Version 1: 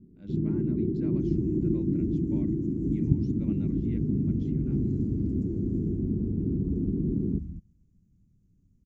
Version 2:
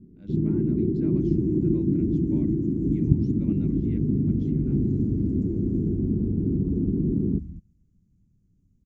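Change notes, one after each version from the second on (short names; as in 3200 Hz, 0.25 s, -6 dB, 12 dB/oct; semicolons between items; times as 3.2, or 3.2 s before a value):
first sound +4.0 dB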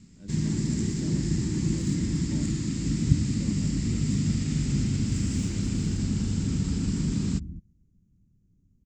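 first sound: remove synth low-pass 370 Hz, resonance Q 4.4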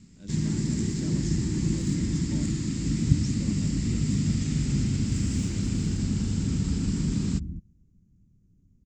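speech: remove air absorption 380 m; second sound +3.0 dB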